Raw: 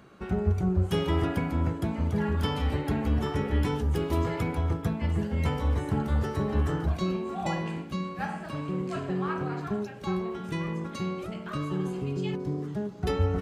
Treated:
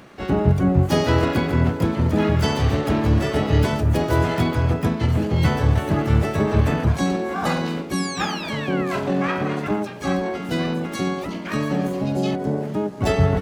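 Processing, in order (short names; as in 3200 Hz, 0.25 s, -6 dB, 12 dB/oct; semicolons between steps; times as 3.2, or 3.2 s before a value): painted sound fall, 7.94–8.98, 1000–5900 Hz -42 dBFS; harmoniser +7 st -2 dB, +12 st -7 dB; gain +5.5 dB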